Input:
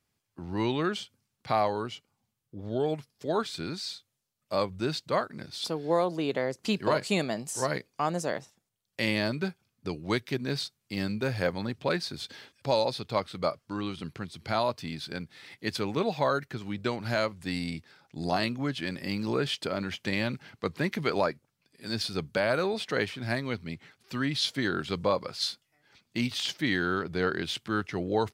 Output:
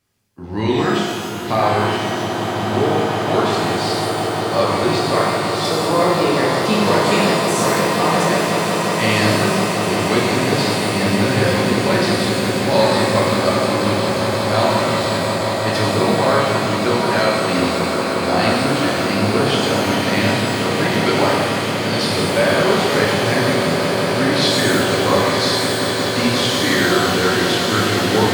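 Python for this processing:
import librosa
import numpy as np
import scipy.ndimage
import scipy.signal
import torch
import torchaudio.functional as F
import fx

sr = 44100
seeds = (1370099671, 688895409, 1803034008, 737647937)

y = fx.echo_swell(x, sr, ms=179, loudest=8, wet_db=-11)
y = fx.rev_shimmer(y, sr, seeds[0], rt60_s=1.4, semitones=12, shimmer_db=-8, drr_db=-4.5)
y = y * 10.0 ** (5.0 / 20.0)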